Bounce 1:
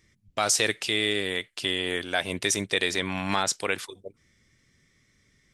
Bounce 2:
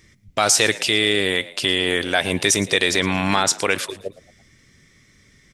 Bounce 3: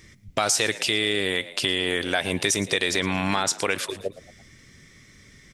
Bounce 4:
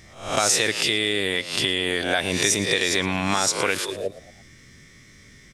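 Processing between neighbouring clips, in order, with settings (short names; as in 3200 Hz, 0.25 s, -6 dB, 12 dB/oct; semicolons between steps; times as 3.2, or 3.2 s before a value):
in parallel at +2 dB: limiter -20.5 dBFS, peak gain reduction 11 dB; on the sum: frequency-shifting echo 0.112 s, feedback 40%, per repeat +68 Hz, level -18.5 dB; gain +3.5 dB
compressor 2:1, threshold -29 dBFS, peak gain reduction 9.5 dB; gain +3 dB
spectral swells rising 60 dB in 0.50 s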